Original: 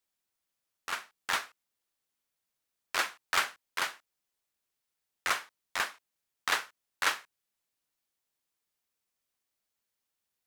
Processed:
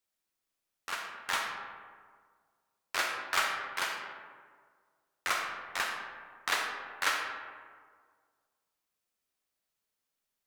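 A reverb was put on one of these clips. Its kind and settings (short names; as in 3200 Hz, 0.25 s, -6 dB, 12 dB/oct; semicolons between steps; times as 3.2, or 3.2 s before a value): digital reverb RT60 1.8 s, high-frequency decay 0.45×, pre-delay 5 ms, DRR 1.5 dB; gain -2 dB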